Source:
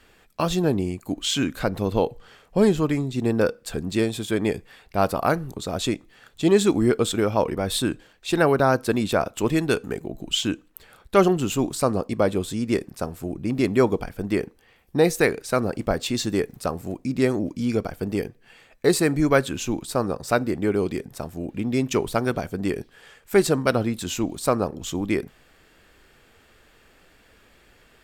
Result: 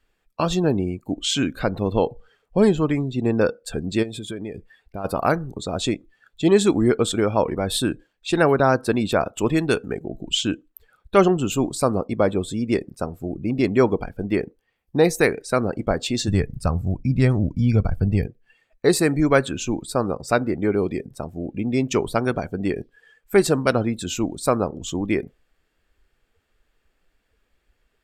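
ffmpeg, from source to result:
-filter_complex "[0:a]asplit=3[s0][s1][s2];[s0]afade=t=out:st=4.02:d=0.02[s3];[s1]acompressor=threshold=0.0355:ratio=5:attack=3.2:release=140:knee=1:detection=peak,afade=t=in:st=4.02:d=0.02,afade=t=out:st=5.04:d=0.02[s4];[s2]afade=t=in:st=5.04:d=0.02[s5];[s3][s4][s5]amix=inputs=3:normalize=0,asplit=3[s6][s7][s8];[s6]afade=t=out:st=16.27:d=0.02[s9];[s7]asubboost=boost=9:cutoff=110,afade=t=in:st=16.27:d=0.02,afade=t=out:st=18.25:d=0.02[s10];[s8]afade=t=in:st=18.25:d=0.02[s11];[s9][s10][s11]amix=inputs=3:normalize=0,afftdn=nr=18:nf=-41,volume=1.19"

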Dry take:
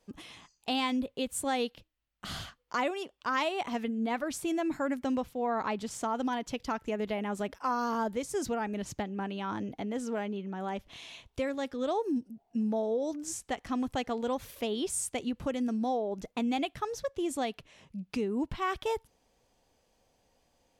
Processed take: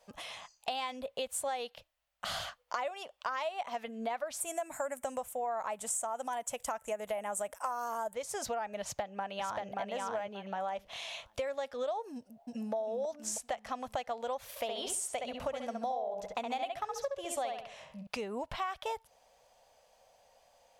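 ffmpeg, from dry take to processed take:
-filter_complex "[0:a]asplit=3[s0][s1][s2];[s0]afade=t=out:st=4.4:d=0.02[s3];[s1]highshelf=f=6200:t=q:w=3:g=11.5,afade=t=in:st=4.4:d=0.02,afade=t=out:st=8.13:d=0.02[s4];[s2]afade=t=in:st=8.13:d=0.02[s5];[s3][s4][s5]amix=inputs=3:normalize=0,asplit=2[s6][s7];[s7]afade=t=in:st=8.81:d=0.01,afade=t=out:st=9.7:d=0.01,aecho=0:1:580|1160|1740:0.794328|0.119149|0.0178724[s8];[s6][s8]amix=inputs=2:normalize=0,asplit=2[s9][s10];[s10]afade=t=in:st=12.15:d=0.01,afade=t=out:st=12.73:d=0.01,aecho=0:1:320|640|960|1280|1600:0.794328|0.317731|0.127093|0.050837|0.0203348[s11];[s9][s11]amix=inputs=2:normalize=0,asettb=1/sr,asplit=3[s12][s13][s14];[s12]atrim=end=14.504[s15];[s13]atrim=start=14.5:end=18.07,asetpts=PTS-STARTPTS,afade=t=in:d=0.004:c=qsin,afade=t=out:st=3.566:d=0.004:c=qsin,asplit=2[s16][s17];[s17]adelay=67,lowpass=f=3600:p=1,volume=0.631,asplit=2[s18][s19];[s19]adelay=67,lowpass=f=3600:p=1,volume=0.35,asplit=2[s20][s21];[s21]adelay=67,lowpass=f=3600:p=1,volume=0.35,asplit=2[s22][s23];[s23]adelay=67,lowpass=f=3600:p=1,volume=0.35[s24];[s16][s18][s20][s22][s24]amix=inputs=5:normalize=0,atrim=end_sample=157437[s25];[s14]atrim=start=18.066[s26];[s15][s25]acrossfade=d=0.004:c1=hsin:c2=qsin[s27];[s27][s26]acrossfade=d=0.004:c1=qsin:c2=hsin,lowshelf=f=450:t=q:w=3:g=-10,acompressor=threshold=0.0126:ratio=6,volume=1.68"

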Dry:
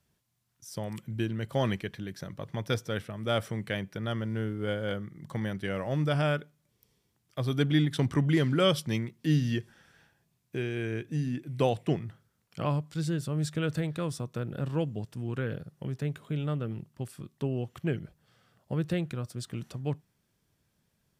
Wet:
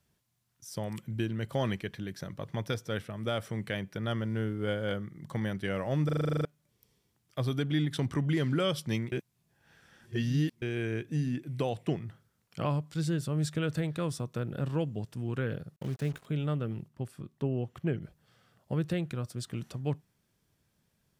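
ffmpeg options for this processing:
-filter_complex "[0:a]asettb=1/sr,asplit=3[s0][s1][s2];[s0]atrim=end=15.764[s3];[s1]atrim=start=15.76:end=16.26,asetpts=PTS-STARTPTS,afade=t=in:d=0.004:c=qsin,afade=t=out:st=0.496:d=0.004:c=qsin,acrusher=bits=7:mix=0:aa=0.5[s4];[s2]atrim=start=16.256[s5];[s3][s4]acrossfade=d=0.004:c1=hsin:c2=qsin[s6];[s6][s5]acrossfade=d=0.004:c1=qsin:c2=hsin,asettb=1/sr,asplit=3[s7][s8][s9];[s7]atrim=end=16.884[s10];[s8]atrim=start=16.88:end=18.02,asetpts=PTS-STARTPTS,afade=t=in:d=0.004:c=qsin,afade=t=out:st=1.136:d=0.004:c=qsin,highshelf=f=2400:g=-7.5[s11];[s9]atrim=start=18.016[s12];[s10][s11]acrossfade=d=0.004:c1=hsin:c2=qsin[s13];[s13][s12]acrossfade=d=0.004:c1=qsin:c2=hsin,asplit=13[s14][s15][s16][s17][s18][s19][s20][s21][s22][s23][s24][s25][s26];[s14]atrim=end=6.092[s27];[s15]atrim=start=6.048:end=6.092[s28];[s16]atrim=start=6.048:end=6.092[s29];[s17]atrim=start=6.048:end=6.092[s30];[s18]atrim=start=6.048:end=6.092[s31];[s19]atrim=start=6.048:end=6.092[s32];[s20]atrim=start=6.048:end=6.092[s33];[s21]atrim=start=6.048:end=6.092[s34];[s22]atrim=start=6.048:end=6.092[s35];[s23]atrim=start=6.048:end=6.092[s36];[s24]atrim=start=6.448:end=9.122[s37];[s25]atrim=start=9.118:end=10.622,asetpts=PTS-STARTPTS,areverse[s38];[s26]atrim=start=10.618[s39];[s27][s28]acrossfade=d=0.004:c1=hsin:c2=hsin[s40];[s40][s29]acrossfade=d=0.004:c1=hsin:c2=hsin[s41];[s41][s30]acrossfade=d=0.004:c1=hsin:c2=hsin[s42];[s42][s31]acrossfade=d=0.004:c1=hsin:c2=hsin[s43];[s43][s32]acrossfade=d=0.004:c1=hsin:c2=hsin[s44];[s44][s33]acrossfade=d=0.004:c1=hsin:c2=hsin[s45];[s45][s34]acrossfade=d=0.004:c1=hsin:c2=hsin[s46];[s46][s35]acrossfade=d=0.004:c1=hsin:c2=hsin[s47];[s47][s36]acrossfade=d=0.004:c1=hsin:c2=hsin[s48];[s48][s37]acrossfade=d=0.004:c1=hsin:c2=hsin[s49];[s49][s38]acrossfade=d=0.004:c1=hsin:c2=hsin[s50];[s50][s39]acrossfade=d=0.004:c1=hsin:c2=hsin,alimiter=limit=0.1:level=0:latency=1:release=262"

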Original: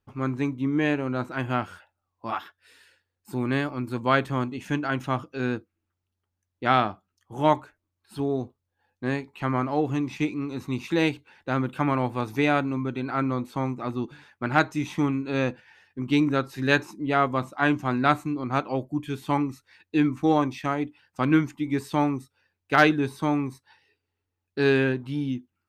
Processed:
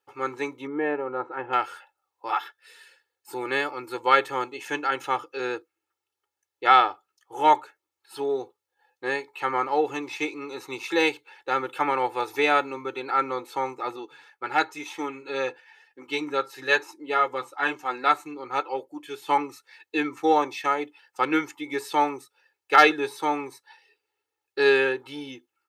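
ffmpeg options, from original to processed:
-filter_complex "[0:a]asettb=1/sr,asplit=3[s0][s1][s2];[s0]atrim=end=0.674[s3];[s1]atrim=start=0.67:end=1.53,asetpts=PTS-STARTPTS,afade=t=in:d=0.004:c=qsin,afade=t=out:st=0.856:d=0.004:c=qsin,lowpass=1200[s4];[s2]atrim=start=1.526[s5];[s3][s4]acrossfade=d=0.004:c1=hsin:c2=qsin[s6];[s6][s5]acrossfade=d=0.004:c1=qsin:c2=hsin,asettb=1/sr,asplit=3[s7][s8][s9];[s7]atrim=end=13.964[s10];[s8]atrim=start=13.96:end=19.28,asetpts=PTS-STARTPTS,afade=t=in:d=0.004:c=qsin,afade=t=out:st=5.316:d=0.004:c=qsin,flanger=delay=3.6:depth=3.8:regen=-41:speed=1:shape=sinusoidal[s11];[s9]atrim=start=19.276[s12];[s10][s11]acrossfade=d=0.004:c1=hsin:c2=qsin[s13];[s13][s12]acrossfade=d=0.004:c1=qsin:c2=hsin,highpass=490,aecho=1:1:2.3:0.89,volume=1.26"

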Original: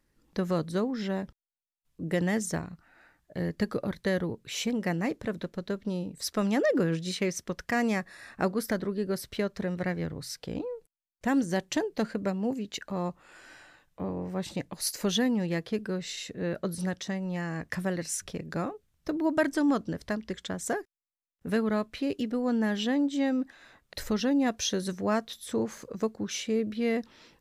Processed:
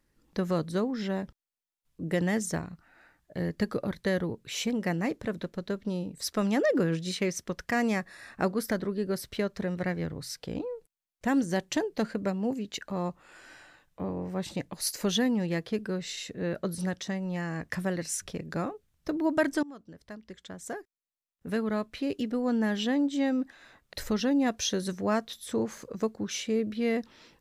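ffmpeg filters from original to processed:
-filter_complex "[0:a]asplit=2[s0][s1];[s0]atrim=end=19.63,asetpts=PTS-STARTPTS,afade=t=out:st=19.626:d=0.004:c=hsin:silence=0.0749894[s2];[s1]atrim=start=19.63,asetpts=PTS-STARTPTS,afade=t=in:d=2.69:silence=0.0749894[s3];[s2][s3]concat=n=2:v=0:a=1"

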